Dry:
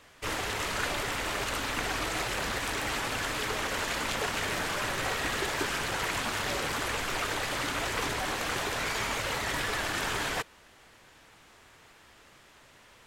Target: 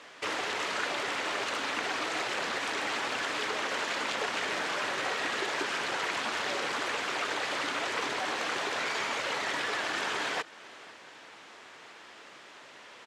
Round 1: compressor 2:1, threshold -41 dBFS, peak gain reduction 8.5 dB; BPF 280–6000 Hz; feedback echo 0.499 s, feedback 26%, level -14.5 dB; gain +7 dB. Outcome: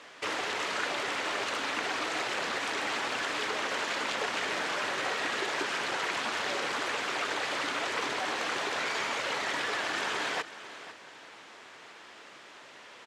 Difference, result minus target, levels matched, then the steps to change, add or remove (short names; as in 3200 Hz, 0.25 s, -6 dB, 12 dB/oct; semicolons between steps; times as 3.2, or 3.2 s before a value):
echo-to-direct +6.5 dB
change: feedback echo 0.499 s, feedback 26%, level -21 dB